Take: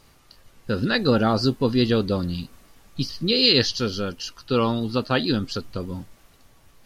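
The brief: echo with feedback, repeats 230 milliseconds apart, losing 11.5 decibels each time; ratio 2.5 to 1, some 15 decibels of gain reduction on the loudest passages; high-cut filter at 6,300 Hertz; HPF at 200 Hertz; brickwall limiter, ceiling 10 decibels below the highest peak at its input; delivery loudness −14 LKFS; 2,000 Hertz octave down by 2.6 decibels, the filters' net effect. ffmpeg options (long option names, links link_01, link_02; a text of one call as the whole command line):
ffmpeg -i in.wav -af "highpass=200,lowpass=6300,equalizer=frequency=2000:width_type=o:gain=-3.5,acompressor=threshold=-39dB:ratio=2.5,alimiter=level_in=6.5dB:limit=-24dB:level=0:latency=1,volume=-6.5dB,aecho=1:1:230|460|690:0.266|0.0718|0.0194,volume=27dB" out.wav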